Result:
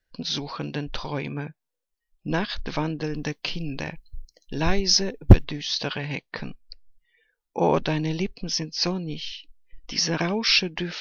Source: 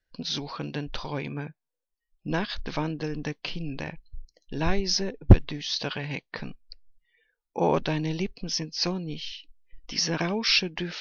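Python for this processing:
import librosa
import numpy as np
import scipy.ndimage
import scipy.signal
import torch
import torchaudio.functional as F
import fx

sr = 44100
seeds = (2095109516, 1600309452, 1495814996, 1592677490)

y = fx.high_shelf(x, sr, hz=5600.0, db=9.0, at=(3.14, 5.45))
y = y * 10.0 ** (2.5 / 20.0)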